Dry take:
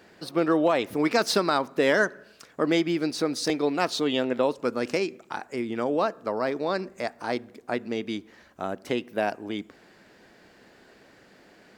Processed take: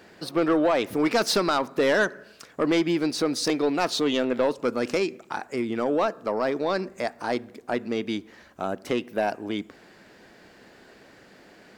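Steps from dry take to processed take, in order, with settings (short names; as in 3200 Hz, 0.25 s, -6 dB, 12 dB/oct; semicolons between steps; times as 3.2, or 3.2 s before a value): soft clip -17.5 dBFS, distortion -15 dB; gain +3 dB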